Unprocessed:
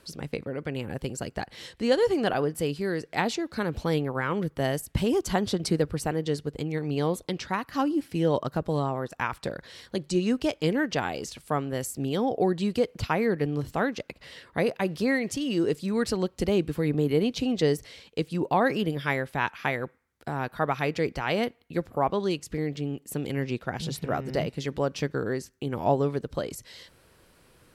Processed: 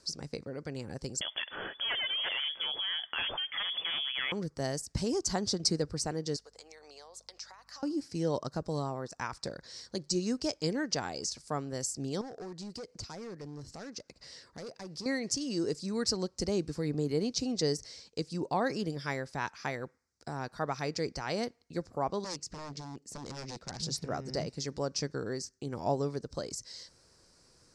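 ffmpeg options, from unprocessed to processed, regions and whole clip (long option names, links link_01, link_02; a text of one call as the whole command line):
ffmpeg -i in.wav -filter_complex "[0:a]asettb=1/sr,asplit=3[link_01][link_02][link_03];[link_01]atrim=end=1.214[link_04];[link_02]atrim=start=1.21:end=4.32,asetpts=PTS-STARTPTS,afade=type=in:duration=0.004:curve=qsin,afade=type=out:start_time=3.106:duration=0.004:curve=qsin,aeval=exprs='0.335*sin(PI/2*3.98*val(0)/0.335)':channel_layout=same,acompressor=threshold=-20dB:ratio=5:attack=3.2:release=140:knee=1:detection=peak,lowpass=frequency=3000:width_type=q:width=0.5098,lowpass=frequency=3000:width_type=q:width=0.6013,lowpass=frequency=3000:width_type=q:width=0.9,lowpass=frequency=3000:width_type=q:width=2.563,afreqshift=-3500[link_05];[link_03]atrim=start=4.316[link_06];[link_04][link_05]acrossfade=duration=0.004:curve1=hsin:curve2=qsin[link_07];[link_07][link_06]acrossfade=duration=0.004:curve1=qsin:curve2=hsin,asettb=1/sr,asplit=3[link_08][link_09][link_10];[link_08]atrim=end=6.364[link_11];[link_09]atrim=start=6.36:end=7.83,asetpts=PTS-STARTPTS,afade=type=in:duration=0.004:curve=qsin,afade=type=out:start_time=1.466:duration=0.004:curve=qsin,highpass=frequency=580:width=0.5412,highpass=frequency=580:width=1.3066,acompressor=threshold=-41dB:ratio=10:attack=3.2:release=140:knee=1:detection=peak,aeval=exprs='val(0)+0.000631*(sin(2*PI*50*n/s)+sin(2*PI*2*50*n/s)/2+sin(2*PI*3*50*n/s)/3+sin(2*PI*4*50*n/s)/4+sin(2*PI*5*50*n/s)/5)':channel_layout=same[link_12];[link_10]atrim=start=7.826[link_13];[link_11][link_12]acrossfade=duration=0.004:curve1=hsin:curve2=qsin[link_14];[link_14][link_13]acrossfade=duration=0.004:curve1=qsin:curve2=hsin,asettb=1/sr,asplit=3[link_15][link_16][link_17];[link_15]atrim=end=12.214[link_18];[link_16]atrim=start=12.21:end=15.06,asetpts=PTS-STARTPTS,afade=type=in:duration=0.004:curve=qsin,afade=type=out:start_time=2.846:duration=0.004:curve=qsin,acompressor=threshold=-44dB:ratio=1.5:attack=3.2:release=140:knee=1:detection=peak,volume=32dB,asoftclip=hard,volume=-32dB[link_19];[link_17]atrim=start=15.056[link_20];[link_18][link_19]acrossfade=duration=0.004:curve1=hsin:curve2=qsin[link_21];[link_21][link_20]acrossfade=duration=0.004:curve1=qsin:curve2=hsin,asettb=1/sr,asplit=3[link_22][link_23][link_24];[link_22]atrim=end=22.244[link_25];[link_23]atrim=start=22.24:end=23.83,asetpts=PTS-STARTPTS,afade=type=in:duration=0.004:curve=qsin,afade=type=out:start_time=1.586:duration=0.004:curve=qsin,highshelf=frequency=7600:gain=-9,aeval=exprs='0.0355*(abs(mod(val(0)/0.0355+3,4)-2)-1)':channel_layout=same[link_26];[link_24]atrim=start=23.826[link_27];[link_25][link_26]acrossfade=duration=0.004:curve1=hsin:curve2=qsin[link_28];[link_28][link_27]acrossfade=duration=0.004:curve1=qsin:curve2=hsin,lowpass=frequency=8100:width=0.5412,lowpass=frequency=8100:width=1.3066,highshelf=frequency=4000:width_type=q:width=3:gain=8.5,volume=-7dB" out.wav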